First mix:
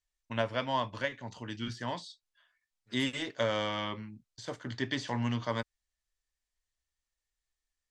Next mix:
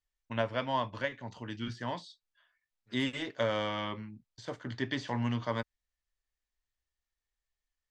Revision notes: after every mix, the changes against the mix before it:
master: add treble shelf 5.8 kHz -10.5 dB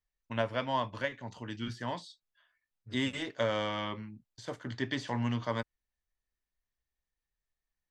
first voice: remove low-pass 6.9 kHz 12 dB/octave; second voice: remove frequency weighting ITU-R 468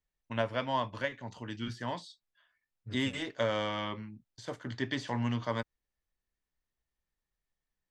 second voice +6.0 dB

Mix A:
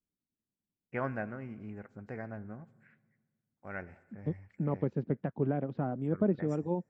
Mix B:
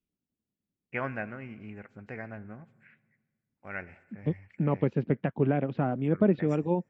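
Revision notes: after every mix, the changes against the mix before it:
second voice +5.0 dB; master: add peaking EQ 2.6 kHz +11 dB 1.1 oct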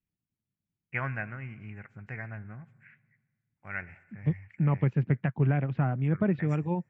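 master: add ten-band graphic EQ 125 Hz +8 dB, 250 Hz -6 dB, 500 Hz -7 dB, 2 kHz +5 dB, 4 kHz -7 dB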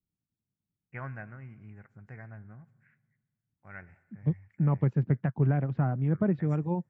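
first voice -5.0 dB; master: add peaking EQ 2.6 kHz -11 dB 1.1 oct

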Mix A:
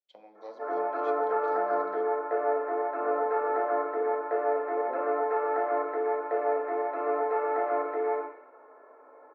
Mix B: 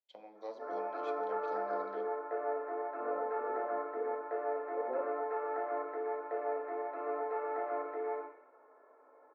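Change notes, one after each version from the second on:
background -8.5 dB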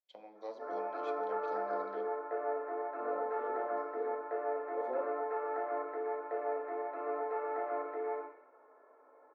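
second voice: remove low-pass 1.2 kHz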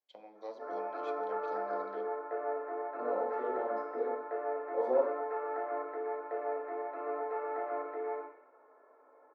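second voice: send +9.5 dB

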